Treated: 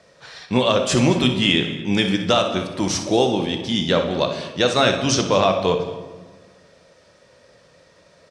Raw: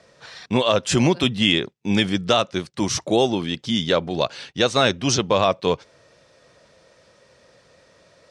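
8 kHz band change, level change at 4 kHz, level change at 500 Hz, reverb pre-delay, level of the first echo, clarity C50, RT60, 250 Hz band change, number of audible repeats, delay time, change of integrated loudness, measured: +1.0 dB, +1.0 dB, +2.0 dB, 7 ms, -10.5 dB, 6.0 dB, 1.4 s, +1.5 dB, 2, 62 ms, +1.5 dB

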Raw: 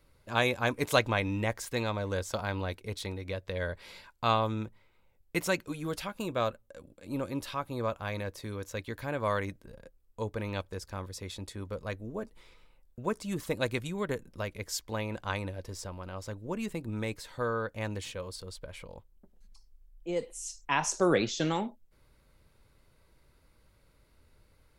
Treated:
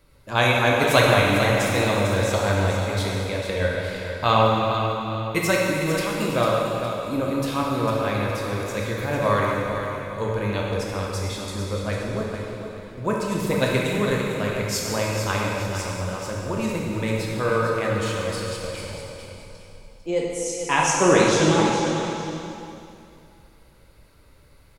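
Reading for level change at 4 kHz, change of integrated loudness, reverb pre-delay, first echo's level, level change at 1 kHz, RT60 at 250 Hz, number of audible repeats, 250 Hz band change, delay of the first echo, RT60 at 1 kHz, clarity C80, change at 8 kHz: +11.0 dB, +10.5 dB, 7 ms, -8.0 dB, +11.0 dB, 2.7 s, 2, +10.5 dB, 0.45 s, 2.6 s, -0.5 dB, +10.5 dB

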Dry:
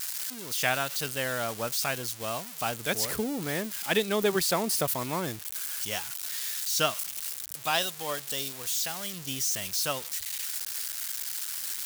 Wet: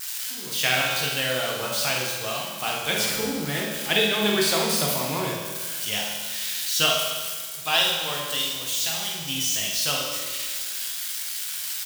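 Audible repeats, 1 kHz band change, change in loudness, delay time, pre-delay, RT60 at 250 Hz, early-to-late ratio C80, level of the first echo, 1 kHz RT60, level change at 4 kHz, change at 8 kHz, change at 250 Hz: 1, +3.5 dB, +5.5 dB, 48 ms, 5 ms, 1.6 s, 3.5 dB, -6.0 dB, 1.6 s, +9.5 dB, +4.0 dB, +3.5 dB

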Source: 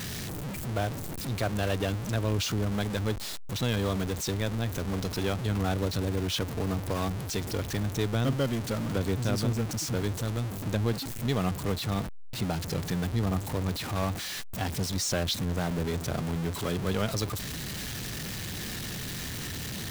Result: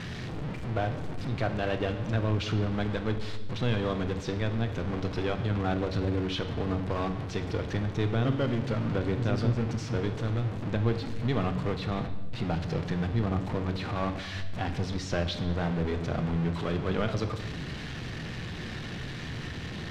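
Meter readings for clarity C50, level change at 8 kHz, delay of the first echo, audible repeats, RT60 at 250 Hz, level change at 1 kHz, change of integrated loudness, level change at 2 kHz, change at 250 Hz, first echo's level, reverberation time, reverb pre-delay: 11.0 dB, under -10 dB, none, none, 1.6 s, +0.5 dB, 0.0 dB, 0.0 dB, +0.5 dB, none, 1.2 s, 3 ms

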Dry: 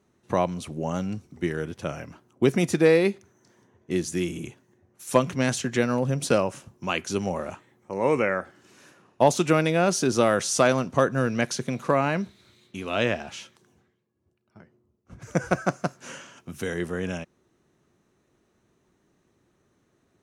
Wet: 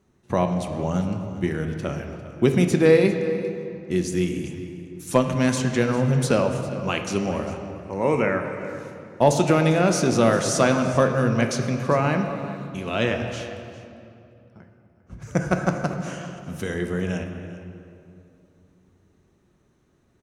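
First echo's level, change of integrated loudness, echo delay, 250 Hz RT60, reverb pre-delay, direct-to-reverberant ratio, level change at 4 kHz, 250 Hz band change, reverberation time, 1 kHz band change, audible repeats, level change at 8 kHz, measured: -16.5 dB, +2.0 dB, 0.4 s, 3.0 s, 4 ms, 4.5 dB, +1.0 dB, +4.0 dB, 2.6 s, +1.5 dB, 1, +0.5 dB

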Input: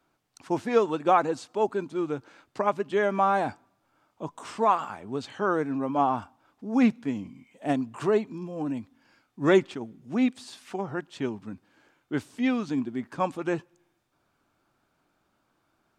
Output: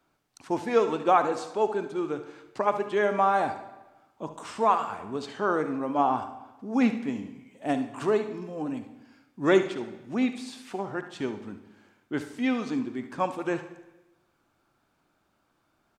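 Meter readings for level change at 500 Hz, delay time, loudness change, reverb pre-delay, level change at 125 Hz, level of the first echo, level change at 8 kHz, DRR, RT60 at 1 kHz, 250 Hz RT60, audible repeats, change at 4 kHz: 0.0 dB, 72 ms, -0.5 dB, 38 ms, -3.5 dB, -13.0 dB, n/a, 9.0 dB, 1.1 s, 1.1 s, 1, +0.5 dB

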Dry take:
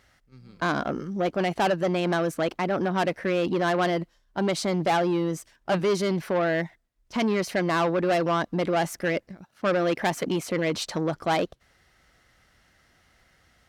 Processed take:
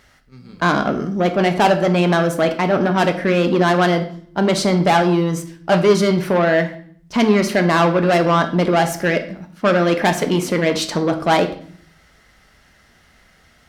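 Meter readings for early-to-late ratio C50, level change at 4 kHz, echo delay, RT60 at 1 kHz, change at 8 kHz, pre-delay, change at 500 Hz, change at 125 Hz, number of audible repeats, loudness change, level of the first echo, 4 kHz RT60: 11.5 dB, +9.0 dB, none, 0.55 s, +8.5 dB, 4 ms, +8.5 dB, +10.5 dB, none, +9.0 dB, none, 0.50 s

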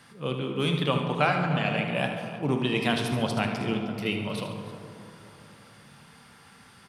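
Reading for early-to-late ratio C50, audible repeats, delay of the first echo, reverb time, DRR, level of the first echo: 3.5 dB, 3, 77 ms, 2.9 s, 2.5 dB, -9.0 dB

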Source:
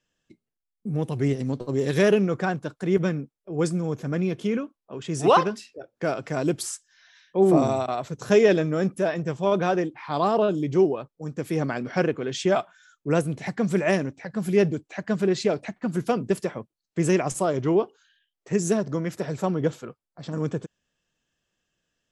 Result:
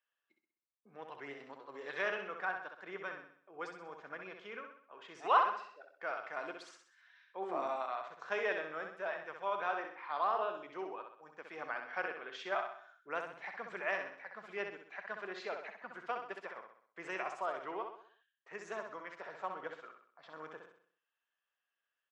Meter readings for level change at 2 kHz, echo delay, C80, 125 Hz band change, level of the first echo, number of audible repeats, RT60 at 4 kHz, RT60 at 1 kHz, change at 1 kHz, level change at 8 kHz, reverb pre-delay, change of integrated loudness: -6.5 dB, 64 ms, none, under -35 dB, -6.0 dB, 5, none, none, -7.5 dB, under -25 dB, none, -15.0 dB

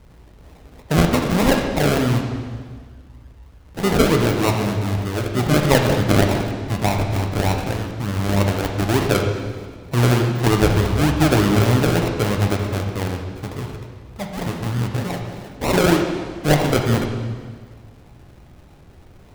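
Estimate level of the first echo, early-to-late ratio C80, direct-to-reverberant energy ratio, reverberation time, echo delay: none, 6.0 dB, 2.5 dB, 1.7 s, none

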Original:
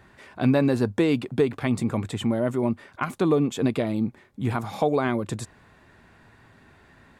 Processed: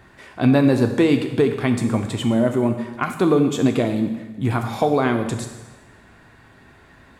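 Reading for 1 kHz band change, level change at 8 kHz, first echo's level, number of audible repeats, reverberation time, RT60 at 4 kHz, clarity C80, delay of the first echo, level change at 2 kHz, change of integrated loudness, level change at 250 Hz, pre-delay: +5.0 dB, +5.5 dB, none, none, 1.2 s, 1.1 s, 10.0 dB, none, +5.0 dB, +5.0 dB, +5.5 dB, 3 ms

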